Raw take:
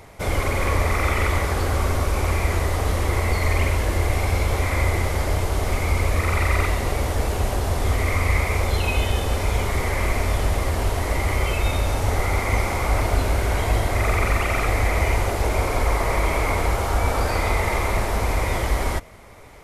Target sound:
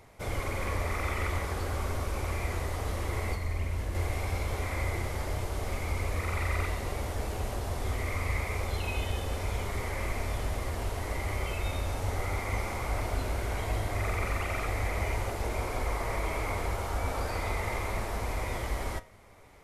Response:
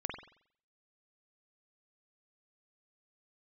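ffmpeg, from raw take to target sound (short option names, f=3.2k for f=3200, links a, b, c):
-filter_complex "[0:a]asettb=1/sr,asplit=3[a][b][c];[a]atrim=end=3.344[d];[b]atrim=start=3.34:end=3.95,asetpts=PTS-STARTPTS,afade=t=in:d=0.004:c=qsin,afade=t=out:st=0.606:d=0.004:c=qsin,acrossover=split=260[e][f];[f]acompressor=threshold=-30dB:ratio=6[g];[e][g]amix=inputs=2:normalize=0[h];[c]atrim=start=3.946[i];[d][h]acrossfade=d=0.004:c1=hsin:c2=qsin[j];[j][i]acrossfade=d=0.004:c1=qsin:c2=hsin,flanger=delay=7.9:depth=3.4:regen=82:speed=0.38:shape=triangular,volume=-6dB"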